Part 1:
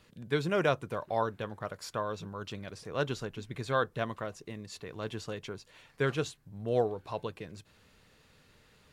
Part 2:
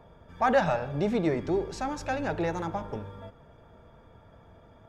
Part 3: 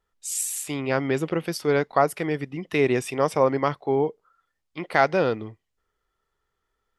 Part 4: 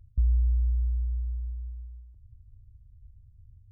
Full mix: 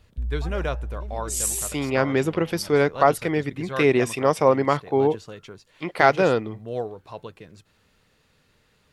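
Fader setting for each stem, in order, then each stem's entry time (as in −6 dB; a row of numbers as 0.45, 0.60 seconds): −1.0, −19.0, +2.5, −5.0 decibels; 0.00, 0.00, 1.05, 0.00 seconds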